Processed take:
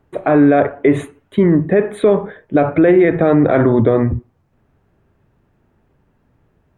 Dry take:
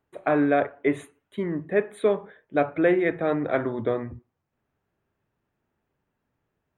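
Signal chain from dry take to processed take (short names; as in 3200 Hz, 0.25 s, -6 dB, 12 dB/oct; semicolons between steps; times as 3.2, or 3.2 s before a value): tilt -2 dB/oct; maximiser +17 dB; gain -2.5 dB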